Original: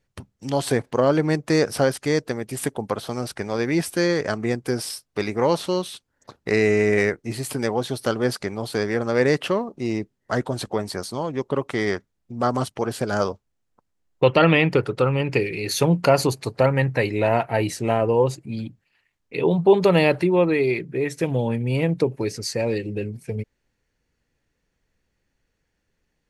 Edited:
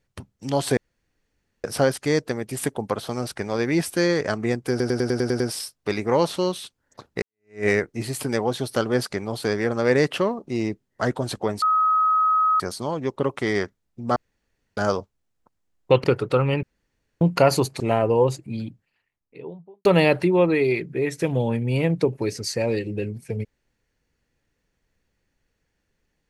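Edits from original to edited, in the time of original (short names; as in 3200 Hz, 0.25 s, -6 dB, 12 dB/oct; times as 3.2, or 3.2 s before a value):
0.77–1.64 room tone
4.7 stutter 0.10 s, 8 plays
6.52–6.96 fade in exponential
10.92 add tone 1270 Hz -16 dBFS 0.98 s
12.48–13.09 room tone
14.36–14.71 cut
15.3–15.88 room tone
16.47–17.79 cut
18.38–19.84 studio fade out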